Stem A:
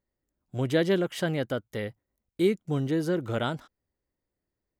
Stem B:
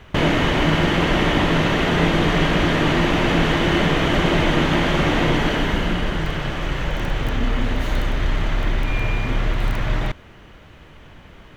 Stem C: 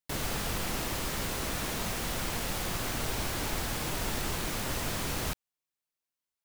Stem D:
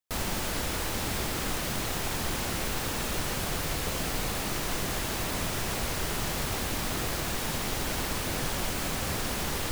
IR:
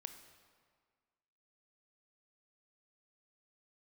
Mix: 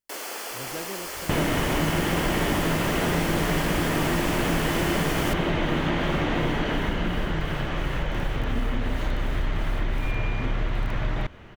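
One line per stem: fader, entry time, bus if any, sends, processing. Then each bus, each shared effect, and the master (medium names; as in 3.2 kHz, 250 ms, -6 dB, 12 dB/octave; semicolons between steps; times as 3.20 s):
-14.0 dB, 0.00 s, no send, none
-1.0 dB, 1.15 s, no send, treble shelf 3.9 kHz -6 dB; compression 2.5:1, threshold -22 dBFS, peak gain reduction 7 dB
+1.0 dB, 0.00 s, no send, high-pass 350 Hz 24 dB/octave; band-stop 3.8 kHz, Q 6.8
-19.0 dB, 0.40 s, no send, tremolo of two beating tones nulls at 2.8 Hz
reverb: none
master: none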